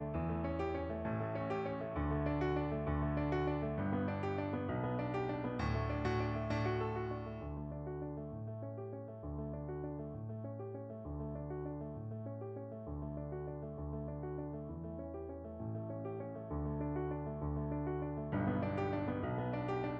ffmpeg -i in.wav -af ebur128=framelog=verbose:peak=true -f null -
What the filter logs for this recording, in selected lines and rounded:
Integrated loudness:
  I:         -40.2 LUFS
  Threshold: -50.2 LUFS
Loudness range:
  LRA:         7.2 LU
  Threshold: -60.5 LUFS
  LRA low:   -44.8 LUFS
  LRA high:  -37.5 LUFS
True peak:
  Peak:      -22.7 dBFS